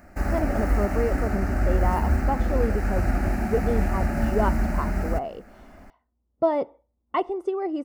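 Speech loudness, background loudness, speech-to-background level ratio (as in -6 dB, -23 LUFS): -29.0 LUFS, -26.0 LUFS, -3.0 dB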